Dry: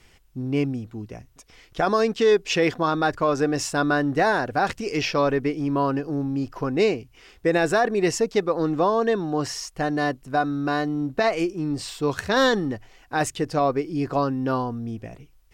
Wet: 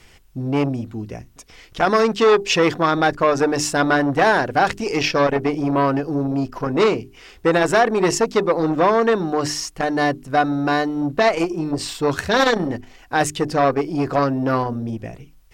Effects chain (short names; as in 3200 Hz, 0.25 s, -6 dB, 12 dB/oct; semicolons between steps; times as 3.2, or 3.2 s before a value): notches 50/100/150/200/250/300/350/400 Hz; core saturation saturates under 900 Hz; gain +6.5 dB